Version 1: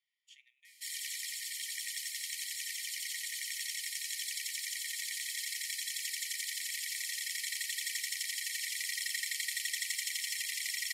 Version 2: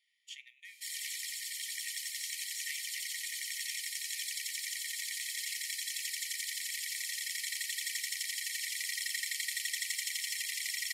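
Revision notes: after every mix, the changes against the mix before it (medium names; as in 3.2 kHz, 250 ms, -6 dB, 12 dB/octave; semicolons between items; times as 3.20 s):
speech +11.0 dB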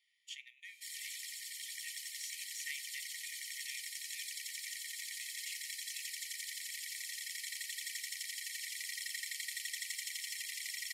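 background -5.5 dB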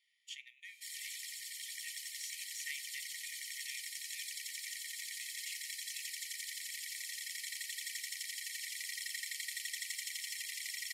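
no change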